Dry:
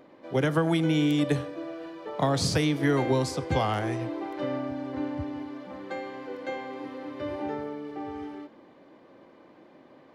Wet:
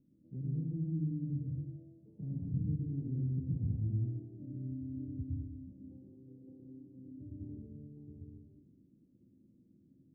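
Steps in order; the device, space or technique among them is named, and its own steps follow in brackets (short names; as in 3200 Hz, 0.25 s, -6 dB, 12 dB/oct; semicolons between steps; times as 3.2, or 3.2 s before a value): club heard from the street (limiter -21 dBFS, peak gain reduction 9 dB; LPF 210 Hz 24 dB/oct; reverb RT60 0.75 s, pre-delay 0.1 s, DRR -2.5 dB); gain -5 dB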